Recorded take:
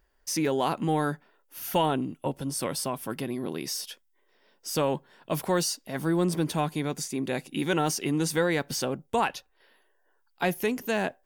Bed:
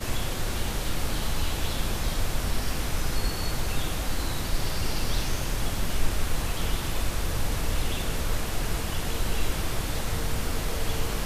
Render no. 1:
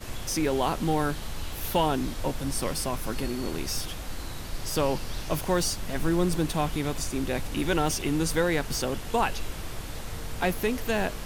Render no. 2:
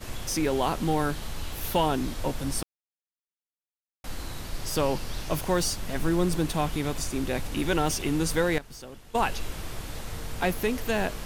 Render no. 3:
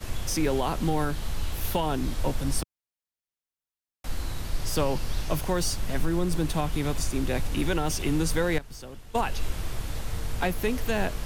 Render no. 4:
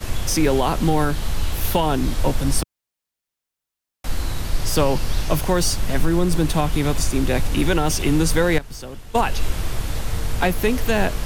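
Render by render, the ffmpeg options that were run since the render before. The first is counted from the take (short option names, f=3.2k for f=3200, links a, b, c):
-filter_complex "[1:a]volume=-7.5dB[a];[0:a][a]amix=inputs=2:normalize=0"
-filter_complex "[0:a]asettb=1/sr,asplit=3[a][b][c];[a]atrim=end=8.584[d];[b]atrim=start=8.58:end=9.22,asetpts=PTS-STARTPTS,afade=t=in:d=0.004:c=qsin,afade=t=out:st=0.636:d=0.004:c=qsin,agate=range=-14dB:threshold=-25dB:ratio=16:release=100:detection=peak[e];[c]atrim=start=9.216[f];[d][e]acrossfade=d=0.004:c1=hsin:c2=qsin[g];[g][f]acrossfade=d=0.004:c1=qsin:c2=hsin,asplit=3[h][i][j];[h]atrim=end=2.63,asetpts=PTS-STARTPTS,afade=t=out:st=2.626:d=0.004:c=hsin[k];[i]atrim=start=2.63:end=4.04,asetpts=PTS-STARTPTS,volume=0[l];[j]atrim=start=4.04,asetpts=PTS-STARTPTS,afade=t=in:d=0.004:c=hsin[m];[k][l][m]concat=n=3:v=0:a=1"
-filter_complex "[0:a]acrossover=split=120|710|3300[a][b][c][d];[a]acontrast=55[e];[e][b][c][d]amix=inputs=4:normalize=0,alimiter=limit=-14.5dB:level=0:latency=1:release=223"
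-af "volume=7.5dB"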